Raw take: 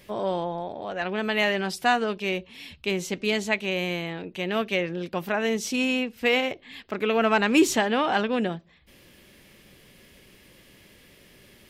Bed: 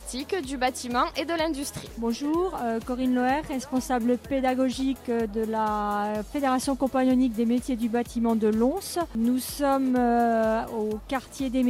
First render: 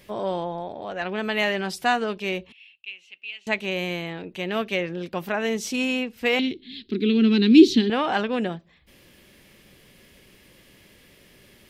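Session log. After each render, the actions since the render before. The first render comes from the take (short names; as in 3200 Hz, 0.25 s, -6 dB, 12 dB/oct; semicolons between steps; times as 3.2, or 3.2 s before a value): 2.52–3.47 band-pass 2700 Hz, Q 10; 6.39–7.9 EQ curve 150 Hz 0 dB, 220 Hz +11 dB, 400 Hz +6 dB, 600 Hz -26 dB, 1200 Hz -18 dB, 2700 Hz -2 dB, 4000 Hz +11 dB, 7300 Hz -15 dB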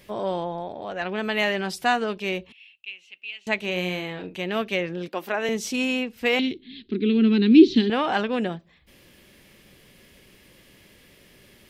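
3.57–4.4 doubler 44 ms -8.5 dB; 5.08–5.49 HPF 250 Hz 24 dB/oct; 6.58–7.76 air absorption 190 m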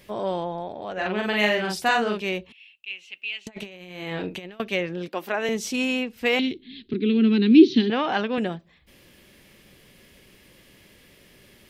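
0.93–2.22 doubler 43 ms -2 dB; 2.9–4.6 negative-ratio compressor -34 dBFS, ratio -0.5; 6.93–8.38 Chebyshev band-pass 110–6300 Hz, order 4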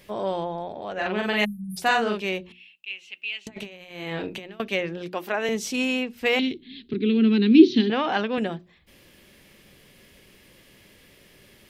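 1.44–1.77 spectral delete 220–8800 Hz; notches 60/120/180/240/300/360 Hz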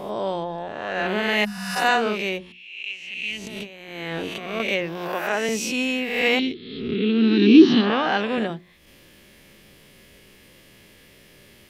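spectral swells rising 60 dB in 1.01 s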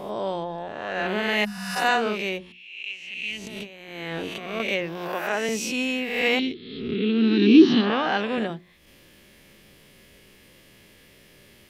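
gain -2 dB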